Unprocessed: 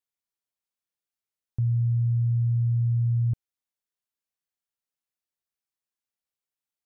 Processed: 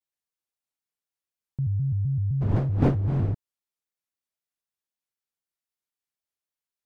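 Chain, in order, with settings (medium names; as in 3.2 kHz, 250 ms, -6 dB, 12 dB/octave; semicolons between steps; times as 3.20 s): 2.41–3.32 s: wind noise 290 Hz -22 dBFS; vibrato with a chosen wave square 3.9 Hz, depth 250 cents; trim -2 dB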